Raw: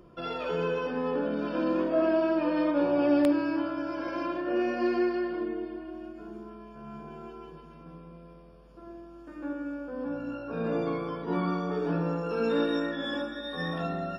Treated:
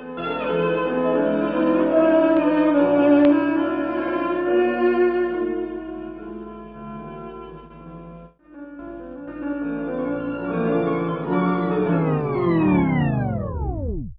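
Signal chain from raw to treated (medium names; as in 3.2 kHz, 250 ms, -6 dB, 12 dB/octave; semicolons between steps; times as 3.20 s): tape stop on the ending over 2.25 s; gate with hold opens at -40 dBFS; steep low-pass 3.4 kHz 36 dB/octave; on a send: reverse echo 883 ms -11 dB; on the sum: attacks held to a fixed rise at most 130 dB/s; trim +8.5 dB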